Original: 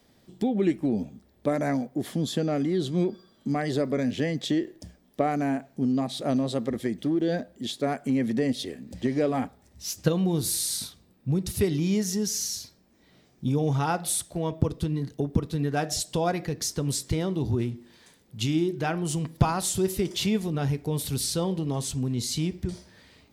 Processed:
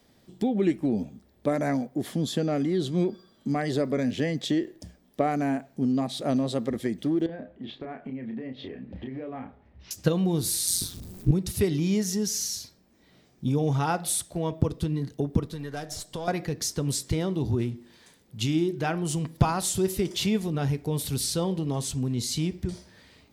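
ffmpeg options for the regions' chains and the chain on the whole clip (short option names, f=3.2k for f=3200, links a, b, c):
-filter_complex "[0:a]asettb=1/sr,asplit=3[a][b][c];[a]atrim=end=7.264[d];[b]atrim=start=7.26:end=9.91,asetpts=PTS-STARTPTS,afade=t=in:d=0.004:c=qsin,afade=t=out:st=2.646:d=0.004:c=qsin,lowpass=f=2.8k:w=0.5412,lowpass=f=2.8k:w=1.3066,acompressor=threshold=-33dB:ratio=12:attack=3.2:release=140:knee=1:detection=peak,asplit=2[e][f];[f]adelay=31,volume=-6dB[g];[e][g]amix=inputs=2:normalize=0,atrim=end_sample=116865[h];[c]atrim=start=9.906[i];[d][h]acrossfade=d=0.004:c1=hsin:c2=qsin[j];[j][i]acrossfade=d=0.004:c1=qsin:c2=hsin,asettb=1/sr,asplit=3[k][l][m];[k]atrim=end=10.674[n];[l]atrim=start=10.67:end=11.31,asetpts=PTS-STARTPTS,afade=t=in:d=0.004:c=qsin,afade=t=out:st=0.636:d=0.004:c=qsin,aeval=exprs='val(0)+0.5*0.00668*sgn(val(0))':c=same,bass=f=250:g=13,treble=f=4k:g=8,tremolo=f=180:d=0.857[o];[m]atrim=start=11.306[p];[n][o]acrossfade=d=0.004:c1=hsin:c2=qsin[q];[q][p]acrossfade=d=0.004:c1=qsin:c2=hsin,asettb=1/sr,asplit=3[r][s][t];[r]atrim=end=15.464[u];[s]atrim=start=15.46:end=16.28,asetpts=PTS-STARTPTS,afade=t=in:d=0.004:c=qsin,afade=t=out:st=0.816:d=0.004:c=qsin,aeval=exprs='if(lt(val(0),0),0.708*val(0),val(0))':c=same,bandreject=f=2.6k:w=12,acrossover=split=570|2600|6400[v][w][x][y];[v]acompressor=threshold=-37dB:ratio=3[z];[w]acompressor=threshold=-40dB:ratio=3[aa];[x]acompressor=threshold=-45dB:ratio=3[ab];[y]acompressor=threshold=-42dB:ratio=3[ac];[z][aa][ab][ac]amix=inputs=4:normalize=0[ad];[t]atrim=start=16.276[ae];[u][ad]acrossfade=d=0.004:c1=hsin:c2=qsin[af];[af][ae]acrossfade=d=0.004:c1=qsin:c2=hsin"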